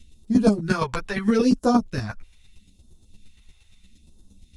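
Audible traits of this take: phasing stages 2, 0.77 Hz, lowest notch 240–2200 Hz; chopped level 8.6 Hz, depth 60%, duty 10%; a shimmering, thickened sound

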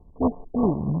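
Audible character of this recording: a buzz of ramps at a fixed pitch in blocks of 16 samples; phasing stages 2, 3.5 Hz, lowest notch 580–1300 Hz; aliases and images of a low sample rate 1600 Hz, jitter 0%; MP2

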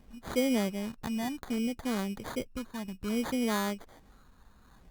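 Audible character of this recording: phasing stages 8, 0.62 Hz, lowest notch 480–2800 Hz; aliases and images of a low sample rate 2700 Hz, jitter 0%; Opus

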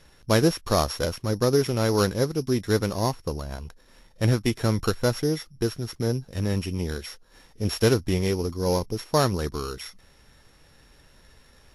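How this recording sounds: a buzz of ramps at a fixed pitch in blocks of 8 samples; Vorbis

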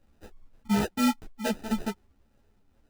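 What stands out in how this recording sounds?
phasing stages 4, 2.2 Hz, lowest notch 530–1100 Hz; aliases and images of a low sample rate 1100 Hz, jitter 0%; a shimmering, thickened sound

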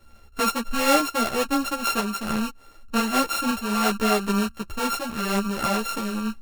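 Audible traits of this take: a buzz of ramps at a fixed pitch in blocks of 32 samples; tremolo saw up 2 Hz, depth 45%; a shimmering, thickened sound

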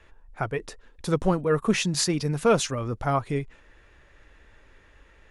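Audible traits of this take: noise floor -56 dBFS; spectral tilt -5.0 dB/oct

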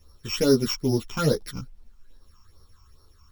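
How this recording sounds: a buzz of ramps at a fixed pitch in blocks of 8 samples; phasing stages 8, 2.4 Hz, lowest notch 510–2600 Hz; a quantiser's noise floor 12-bit, dither none; a shimmering, thickened sound

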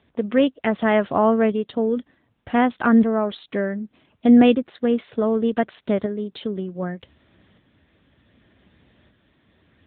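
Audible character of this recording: tremolo saw up 0.66 Hz, depth 45%; a quantiser's noise floor 12-bit, dither none; AMR-NB

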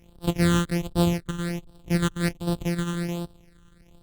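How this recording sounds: a buzz of ramps at a fixed pitch in blocks of 256 samples; phasing stages 8, 1.3 Hz, lowest notch 660–2100 Hz; Opus

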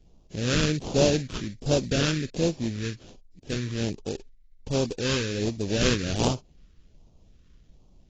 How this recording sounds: aliases and images of a low sample rate 2100 Hz, jitter 20%; phasing stages 2, 1.3 Hz, lowest notch 740–1600 Hz; AAC

